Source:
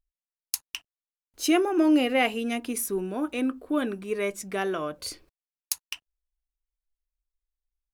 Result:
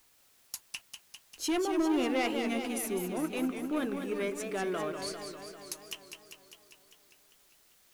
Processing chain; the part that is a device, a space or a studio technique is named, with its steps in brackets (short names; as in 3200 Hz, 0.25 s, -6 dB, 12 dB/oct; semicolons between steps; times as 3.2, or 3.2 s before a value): compact cassette (soft clip -21.5 dBFS, distortion -11 dB; LPF 12000 Hz; wow and flutter; white noise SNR 29 dB); warbling echo 0.199 s, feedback 68%, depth 169 cents, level -7 dB; gain -4 dB